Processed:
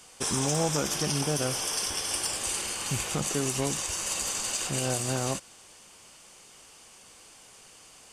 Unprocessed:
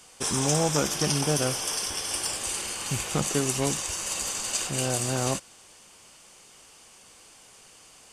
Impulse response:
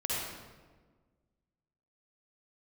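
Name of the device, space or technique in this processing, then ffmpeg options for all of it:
clipper into limiter: -af "asoftclip=type=hard:threshold=-13dB,alimiter=limit=-17dB:level=0:latency=1:release=108"

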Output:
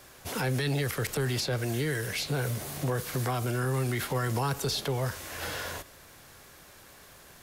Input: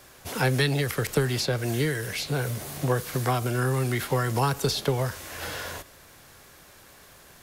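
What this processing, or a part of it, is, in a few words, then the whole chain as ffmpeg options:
soft clipper into limiter: -af "asoftclip=type=tanh:threshold=-11dB,alimiter=limit=-20.5dB:level=0:latency=1:release=23,volume=-1dB"

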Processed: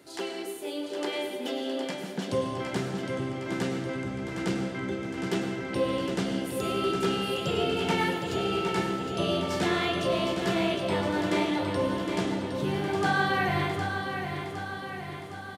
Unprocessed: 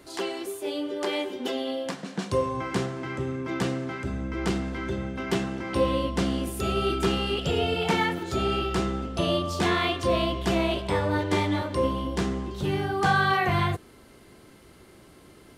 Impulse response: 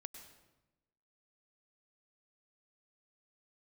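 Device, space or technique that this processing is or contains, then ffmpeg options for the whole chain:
bathroom: -filter_complex "[0:a]highpass=frequency=98:width=0.5412,highpass=frequency=98:width=1.3066,bandreject=frequency=1100:width=8.3[link_01];[1:a]atrim=start_sample=2205[link_02];[link_01][link_02]afir=irnorm=-1:irlink=0,aecho=1:1:762|1524|2286|3048|3810|4572|5334|6096:0.447|0.264|0.155|0.0917|0.0541|0.0319|0.0188|0.0111,volume=2.5dB"

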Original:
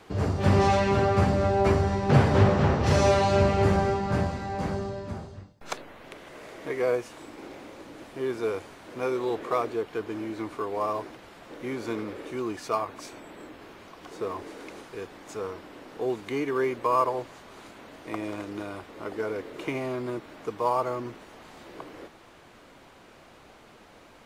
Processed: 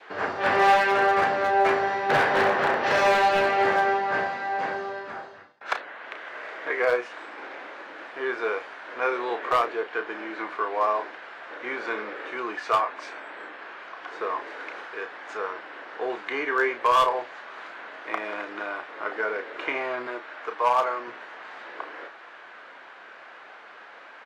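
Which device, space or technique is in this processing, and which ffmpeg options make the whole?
megaphone: -filter_complex "[0:a]highpass=640,lowpass=3000,equalizer=frequency=1600:width_type=o:width=0.58:gain=8,asoftclip=type=hard:threshold=-20dB,asplit=2[link_01][link_02];[link_02]adelay=33,volume=-8.5dB[link_03];[link_01][link_03]amix=inputs=2:normalize=0,asettb=1/sr,asplit=3[link_04][link_05][link_06];[link_04]atrim=end=20.074[link_07];[link_05]atrim=start=20.07:end=21.08,asetpts=PTS-STARTPTS,afade=type=in:duration=0.004:curve=qsin,afade=type=out:start_time=1.006:duration=0.004:curve=qsin,highpass=frequency=360:poles=1[link_08];[link_06]atrim=start=21.076[link_09];[link_07][link_08]acrossfade=duration=0.004:curve1=hsin:curve2=qsin[link_10];[link_10][link_09]acrossfade=duration=0.004:curve1=qsin:curve2=hsin,adynamicequalizer=threshold=0.00708:dfrequency=1300:dqfactor=1.9:tfrequency=1300:tqfactor=1.9:attack=5:release=100:ratio=0.375:range=2.5:mode=cutabove:tftype=bell,volume=6.5dB"

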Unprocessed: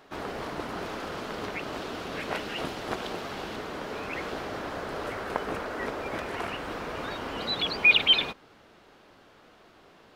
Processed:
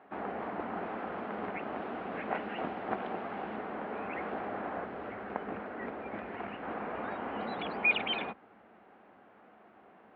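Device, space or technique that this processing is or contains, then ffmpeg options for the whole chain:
bass cabinet: -filter_complex "[0:a]asettb=1/sr,asplit=3[link_01][link_02][link_03];[link_01]atrim=end=4.854[link_04];[link_02]atrim=start=4.85:end=6.63,asetpts=PTS-STARTPTS,afade=type=in:duration=0.004:curve=qsin,afade=type=out:start_time=1.776:duration=0.004:curve=qsin,equalizer=frequency=900:width=0.5:gain=-6[link_05];[link_03]atrim=start=6.626[link_06];[link_04][link_05]acrossfade=duration=0.004:curve1=hsin:curve2=qsin[link_07];[link_07][link_06]acrossfade=duration=0.004:curve1=qsin:curve2=hsin,highpass=frequency=71:width=0.5412,highpass=frequency=71:width=1.3066,equalizer=frequency=89:width_type=q:width=4:gain=-10,equalizer=frequency=140:width_type=q:width=4:gain=-9,equalizer=frequency=210:width_type=q:width=4:gain=7,equalizer=frequency=760:width_type=q:width=4:gain=7,lowpass=frequency=2300:width=0.5412,lowpass=frequency=2300:width=1.3066,volume=-4dB"

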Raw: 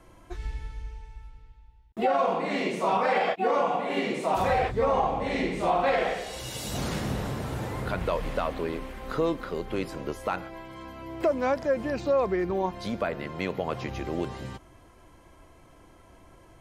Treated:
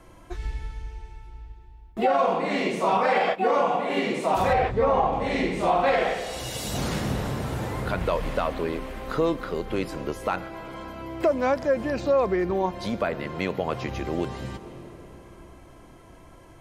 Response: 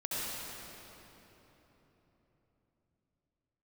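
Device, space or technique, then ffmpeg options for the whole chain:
ducked reverb: -filter_complex "[0:a]asettb=1/sr,asplit=3[link_01][link_02][link_03];[link_01]atrim=end=4.534[link_04];[link_02]atrim=start=4.53:end=5.13,asetpts=PTS-STARTPTS,afade=type=in:duration=0.004:curve=qsin,afade=type=out:start_time=0.596:duration=0.004:curve=qsin,aemphasis=mode=reproduction:type=50fm[link_05];[link_03]atrim=start=5.126[link_06];[link_04][link_05]acrossfade=duration=0.004:curve1=hsin:curve2=qsin[link_07];[link_07][link_06]acrossfade=duration=0.004:curve1=qsin:curve2=hsin,asplit=3[link_08][link_09][link_10];[1:a]atrim=start_sample=2205[link_11];[link_09][link_11]afir=irnorm=-1:irlink=0[link_12];[link_10]apad=whole_len=732425[link_13];[link_12][link_13]sidechaincompress=threshold=-39dB:ratio=4:attack=16:release=280,volume=-15.5dB[link_14];[link_08][link_14]amix=inputs=2:normalize=0,volume=2.5dB"

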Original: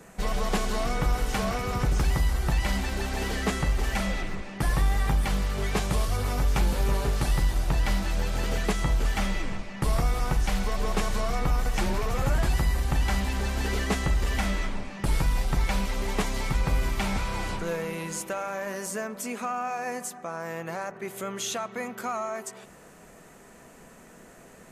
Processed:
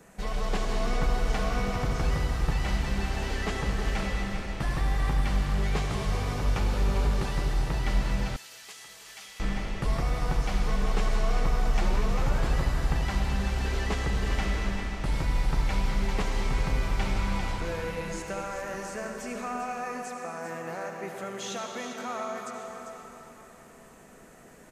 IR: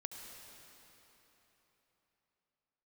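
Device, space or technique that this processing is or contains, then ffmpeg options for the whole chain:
cave: -filter_complex "[0:a]acrossover=split=7100[link_01][link_02];[link_02]acompressor=threshold=-54dB:ratio=4:attack=1:release=60[link_03];[link_01][link_03]amix=inputs=2:normalize=0,aecho=1:1:396:0.335[link_04];[1:a]atrim=start_sample=2205[link_05];[link_04][link_05]afir=irnorm=-1:irlink=0,asettb=1/sr,asplit=3[link_06][link_07][link_08];[link_06]atrim=end=8.364[link_09];[link_07]atrim=start=8.36:end=9.4,asetpts=PTS-STARTPTS,afade=type=in:duration=0.004:curve=qsin,afade=type=out:start_time=1.036:duration=0.004:curve=qsin,aderivative[link_10];[link_08]atrim=start=9.396[link_11];[link_09][link_10]acrossfade=duration=0.004:curve1=hsin:curve2=qsin[link_12];[link_12][link_11]acrossfade=duration=0.004:curve1=qsin:curve2=hsin"

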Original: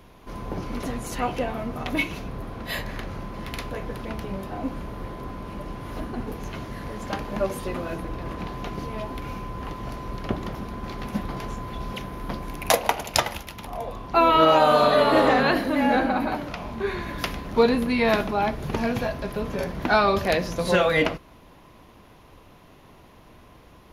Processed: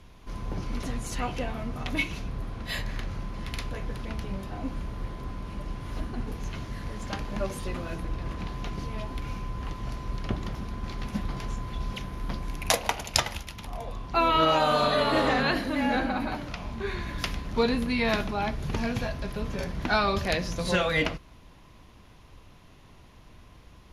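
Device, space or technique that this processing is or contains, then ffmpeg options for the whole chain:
smiley-face EQ: -af "lowpass=8400,lowshelf=frequency=110:gain=6.5,equalizer=frequency=520:width_type=o:width=2.6:gain=-5,highshelf=frequency=5200:gain=6,volume=-2.5dB"

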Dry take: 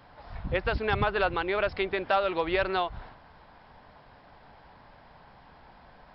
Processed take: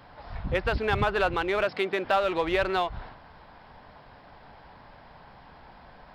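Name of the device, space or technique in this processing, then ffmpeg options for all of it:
parallel distortion: -filter_complex "[0:a]asplit=2[link_01][link_02];[link_02]asoftclip=type=hard:threshold=-32dB,volume=-7dB[link_03];[link_01][link_03]amix=inputs=2:normalize=0,asettb=1/sr,asplit=3[link_04][link_05][link_06];[link_04]atrim=end=1.644[link_07];[link_05]atrim=start=1.64:end=2.05,asetpts=PTS-STARTPTS,afade=type=in:duration=0.004:curve=qsin,afade=type=out:start_time=0.406:duration=0.004:curve=qsin,highpass=frequency=150:width=0.5412,highpass=frequency=150:width=1.3066[link_08];[link_06]atrim=start=2.046[link_09];[link_07][link_08]acrossfade=duration=0.004:curve1=hsin:curve2=qsin[link_10];[link_10][link_09]acrossfade=duration=0.004:curve1=qsin:curve2=hsin"

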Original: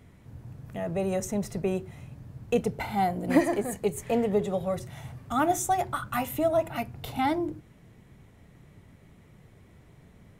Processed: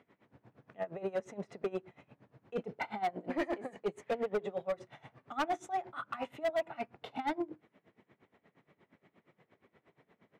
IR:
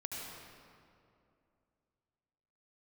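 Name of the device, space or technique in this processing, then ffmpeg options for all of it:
helicopter radio: -af "highpass=320,lowpass=2800,aeval=exprs='val(0)*pow(10,-21*(0.5-0.5*cos(2*PI*8.5*n/s))/20)':channel_layout=same,asoftclip=type=hard:threshold=-27.5dB"

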